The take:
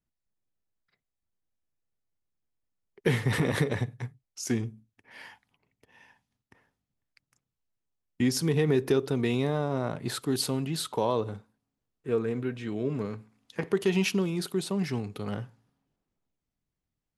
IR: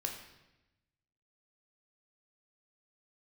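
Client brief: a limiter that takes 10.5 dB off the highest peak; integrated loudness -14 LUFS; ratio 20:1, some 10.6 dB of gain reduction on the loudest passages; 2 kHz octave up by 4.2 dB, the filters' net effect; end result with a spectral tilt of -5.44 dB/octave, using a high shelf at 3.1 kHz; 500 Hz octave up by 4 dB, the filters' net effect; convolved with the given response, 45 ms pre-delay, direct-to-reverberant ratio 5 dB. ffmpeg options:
-filter_complex "[0:a]equalizer=f=500:t=o:g=5,equalizer=f=2000:t=o:g=6.5,highshelf=f=3100:g=-5,acompressor=threshold=0.0447:ratio=20,alimiter=level_in=1.12:limit=0.0631:level=0:latency=1,volume=0.891,asplit=2[s0][s1];[1:a]atrim=start_sample=2205,adelay=45[s2];[s1][s2]afir=irnorm=-1:irlink=0,volume=0.501[s3];[s0][s3]amix=inputs=2:normalize=0,volume=11.2"

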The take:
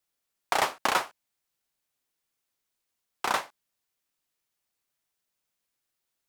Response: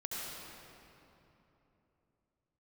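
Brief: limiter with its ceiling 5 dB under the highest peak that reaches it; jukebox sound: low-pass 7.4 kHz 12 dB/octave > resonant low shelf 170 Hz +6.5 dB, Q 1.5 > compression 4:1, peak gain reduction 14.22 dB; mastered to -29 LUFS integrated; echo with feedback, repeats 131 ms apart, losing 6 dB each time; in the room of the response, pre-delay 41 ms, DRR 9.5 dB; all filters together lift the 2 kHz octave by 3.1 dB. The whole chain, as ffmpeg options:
-filter_complex "[0:a]equalizer=f=2000:t=o:g=4,alimiter=limit=0.237:level=0:latency=1,aecho=1:1:131|262|393|524|655|786:0.501|0.251|0.125|0.0626|0.0313|0.0157,asplit=2[s0][s1];[1:a]atrim=start_sample=2205,adelay=41[s2];[s1][s2]afir=irnorm=-1:irlink=0,volume=0.266[s3];[s0][s3]amix=inputs=2:normalize=0,lowpass=7400,lowshelf=f=170:t=q:w=1.5:g=6.5,acompressor=threshold=0.0141:ratio=4,volume=4.22"

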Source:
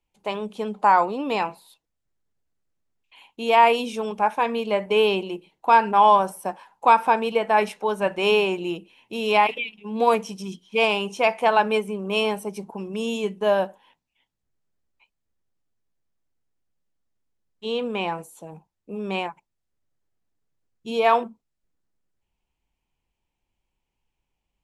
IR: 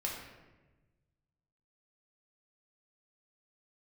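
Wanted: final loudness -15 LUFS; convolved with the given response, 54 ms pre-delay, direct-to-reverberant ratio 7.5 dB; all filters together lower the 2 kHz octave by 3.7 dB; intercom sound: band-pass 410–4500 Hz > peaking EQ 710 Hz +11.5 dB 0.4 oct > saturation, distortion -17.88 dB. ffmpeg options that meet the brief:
-filter_complex "[0:a]equalizer=f=2000:t=o:g=-5,asplit=2[s0][s1];[1:a]atrim=start_sample=2205,adelay=54[s2];[s1][s2]afir=irnorm=-1:irlink=0,volume=0.299[s3];[s0][s3]amix=inputs=2:normalize=0,highpass=410,lowpass=4500,equalizer=f=710:t=o:w=0.4:g=11.5,asoftclip=threshold=0.531,volume=1.68"

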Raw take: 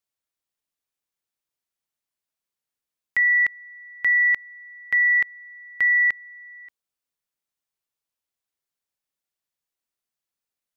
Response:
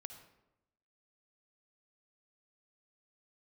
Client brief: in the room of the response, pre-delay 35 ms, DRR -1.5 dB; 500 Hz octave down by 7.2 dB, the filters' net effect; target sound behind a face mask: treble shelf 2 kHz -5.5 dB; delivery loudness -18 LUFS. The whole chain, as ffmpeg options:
-filter_complex "[0:a]equalizer=f=500:t=o:g=-9,asplit=2[s0][s1];[1:a]atrim=start_sample=2205,adelay=35[s2];[s1][s2]afir=irnorm=-1:irlink=0,volume=2.11[s3];[s0][s3]amix=inputs=2:normalize=0,highshelf=f=2000:g=-5.5,volume=1.06"

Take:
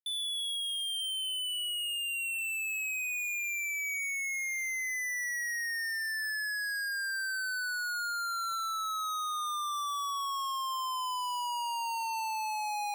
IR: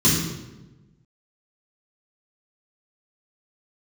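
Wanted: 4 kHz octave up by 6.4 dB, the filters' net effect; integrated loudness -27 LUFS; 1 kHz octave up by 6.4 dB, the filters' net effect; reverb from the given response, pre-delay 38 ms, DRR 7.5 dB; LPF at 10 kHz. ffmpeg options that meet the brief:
-filter_complex "[0:a]lowpass=10000,equalizer=f=1000:t=o:g=7,equalizer=f=4000:t=o:g=8.5,asplit=2[s0][s1];[1:a]atrim=start_sample=2205,adelay=38[s2];[s1][s2]afir=irnorm=-1:irlink=0,volume=0.0596[s3];[s0][s3]amix=inputs=2:normalize=0,volume=0.944"

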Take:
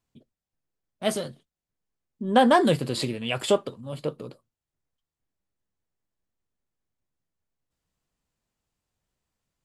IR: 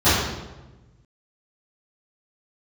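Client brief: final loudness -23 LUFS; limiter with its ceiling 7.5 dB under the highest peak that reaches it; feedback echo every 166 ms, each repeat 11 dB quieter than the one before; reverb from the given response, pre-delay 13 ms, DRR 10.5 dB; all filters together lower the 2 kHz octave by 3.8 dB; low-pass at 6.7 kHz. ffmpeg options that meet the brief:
-filter_complex "[0:a]lowpass=6700,equalizer=f=2000:t=o:g=-5,alimiter=limit=0.168:level=0:latency=1,aecho=1:1:166|332|498:0.282|0.0789|0.0221,asplit=2[s0][s1];[1:a]atrim=start_sample=2205,adelay=13[s2];[s1][s2]afir=irnorm=-1:irlink=0,volume=0.0211[s3];[s0][s3]amix=inputs=2:normalize=0,volume=1.68"

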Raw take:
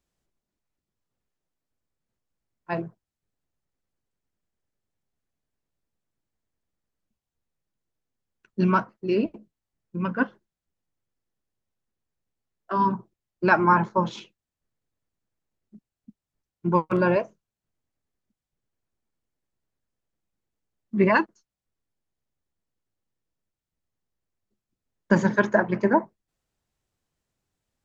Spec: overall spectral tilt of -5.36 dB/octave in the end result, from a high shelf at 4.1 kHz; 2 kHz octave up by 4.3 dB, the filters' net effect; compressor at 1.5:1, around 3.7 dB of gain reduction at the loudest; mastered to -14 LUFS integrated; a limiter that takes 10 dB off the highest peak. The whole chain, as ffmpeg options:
-af "equalizer=f=2000:t=o:g=5,highshelf=f=4100:g=5.5,acompressor=threshold=0.0794:ratio=1.5,volume=5.96,alimiter=limit=0.841:level=0:latency=1"

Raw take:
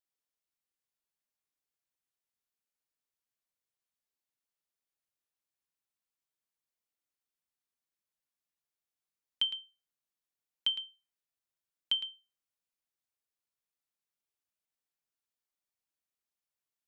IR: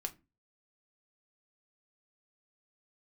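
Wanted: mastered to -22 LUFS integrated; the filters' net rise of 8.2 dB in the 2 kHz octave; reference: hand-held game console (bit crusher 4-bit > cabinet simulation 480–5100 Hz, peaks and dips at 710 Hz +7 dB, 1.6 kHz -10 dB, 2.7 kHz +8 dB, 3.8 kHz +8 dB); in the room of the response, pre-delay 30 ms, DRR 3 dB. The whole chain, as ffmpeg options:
-filter_complex "[0:a]equalizer=f=2000:t=o:g=4,asplit=2[s0][s1];[1:a]atrim=start_sample=2205,adelay=30[s2];[s1][s2]afir=irnorm=-1:irlink=0,volume=0.794[s3];[s0][s3]amix=inputs=2:normalize=0,acrusher=bits=3:mix=0:aa=0.000001,highpass=480,equalizer=f=710:t=q:w=4:g=7,equalizer=f=1600:t=q:w=4:g=-10,equalizer=f=2700:t=q:w=4:g=8,equalizer=f=3800:t=q:w=4:g=8,lowpass=f=5100:w=0.5412,lowpass=f=5100:w=1.3066,volume=1.78"

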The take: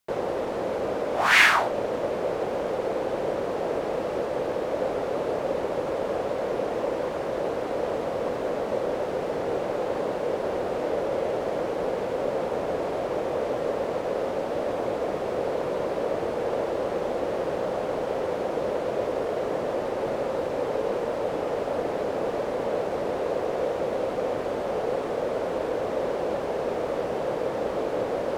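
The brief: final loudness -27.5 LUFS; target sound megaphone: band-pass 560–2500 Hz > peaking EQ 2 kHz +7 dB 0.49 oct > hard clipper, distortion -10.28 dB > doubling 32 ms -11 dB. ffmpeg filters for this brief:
-filter_complex "[0:a]highpass=560,lowpass=2500,equalizer=f=2000:t=o:w=0.49:g=7,asoftclip=type=hard:threshold=0.133,asplit=2[s0][s1];[s1]adelay=32,volume=0.282[s2];[s0][s2]amix=inputs=2:normalize=0,volume=1.33"

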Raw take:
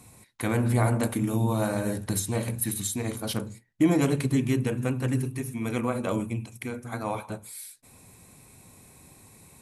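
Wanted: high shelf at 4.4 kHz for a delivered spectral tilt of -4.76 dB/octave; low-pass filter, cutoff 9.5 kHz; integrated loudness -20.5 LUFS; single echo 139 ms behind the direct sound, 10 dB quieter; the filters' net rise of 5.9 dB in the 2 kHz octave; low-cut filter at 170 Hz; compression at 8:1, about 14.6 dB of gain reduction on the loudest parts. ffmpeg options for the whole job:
-af "highpass=170,lowpass=9500,equalizer=f=2000:t=o:g=8.5,highshelf=f=4400:g=-5.5,acompressor=threshold=0.0251:ratio=8,aecho=1:1:139:0.316,volume=6.31"

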